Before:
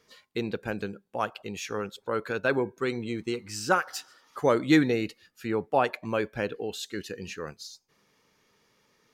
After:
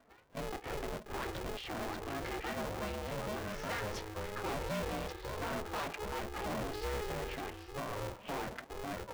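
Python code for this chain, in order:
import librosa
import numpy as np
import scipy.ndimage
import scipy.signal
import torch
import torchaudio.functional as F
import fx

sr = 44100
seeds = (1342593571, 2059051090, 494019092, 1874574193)

p1 = fx.pitch_ramps(x, sr, semitones=5.0, every_ms=345)
p2 = fx.env_lowpass(p1, sr, base_hz=1300.0, full_db=-24.5)
p3 = scipy.signal.sosfilt(scipy.signal.ellip(3, 1.0, 40, [220.0, 5900.0], 'bandpass', fs=sr, output='sos'), p2)
p4 = fx.high_shelf(p3, sr, hz=4000.0, db=-11.5)
p5 = fx.over_compress(p4, sr, threshold_db=-41.0, ratio=-1.0)
p6 = p4 + F.gain(torch.from_numpy(p5), -1.0).numpy()
p7 = fx.echo_pitch(p6, sr, ms=180, semitones=-6, count=2, db_per_echo=-3.0)
p8 = 10.0 ** (-27.5 / 20.0) * np.tanh(p7 / 10.0 ** (-27.5 / 20.0))
p9 = p8 * np.sign(np.sin(2.0 * np.pi * 210.0 * np.arange(len(p8)) / sr))
y = F.gain(torch.from_numpy(p9), -6.5).numpy()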